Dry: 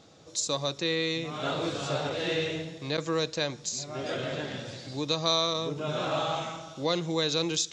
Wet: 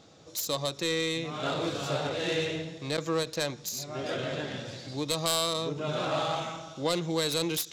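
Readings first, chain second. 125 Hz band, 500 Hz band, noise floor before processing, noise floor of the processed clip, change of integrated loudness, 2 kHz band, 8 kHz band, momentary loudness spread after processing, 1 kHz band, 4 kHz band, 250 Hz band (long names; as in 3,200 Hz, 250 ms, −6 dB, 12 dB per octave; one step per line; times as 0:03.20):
−0.5 dB, −0.5 dB, −49 dBFS, −50 dBFS, −1.0 dB, −0.5 dB, −1.0 dB, 8 LU, −0.5 dB, −2.0 dB, −0.5 dB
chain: phase distortion by the signal itself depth 0.11 ms
every ending faded ahead of time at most 300 dB per second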